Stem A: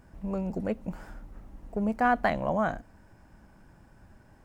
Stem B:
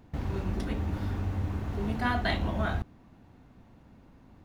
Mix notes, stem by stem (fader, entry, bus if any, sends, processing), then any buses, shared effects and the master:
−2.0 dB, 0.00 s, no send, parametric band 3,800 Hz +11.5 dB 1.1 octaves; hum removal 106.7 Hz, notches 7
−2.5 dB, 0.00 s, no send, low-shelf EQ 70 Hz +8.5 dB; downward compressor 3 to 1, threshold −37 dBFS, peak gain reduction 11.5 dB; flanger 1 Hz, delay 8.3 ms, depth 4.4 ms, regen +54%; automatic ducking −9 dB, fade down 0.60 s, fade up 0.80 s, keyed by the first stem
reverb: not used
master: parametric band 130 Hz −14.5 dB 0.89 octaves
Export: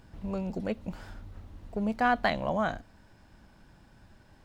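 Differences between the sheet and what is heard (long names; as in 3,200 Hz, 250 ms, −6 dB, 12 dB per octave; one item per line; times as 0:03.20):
stem A: missing hum removal 106.7 Hz, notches 7
master: missing parametric band 130 Hz −14.5 dB 0.89 octaves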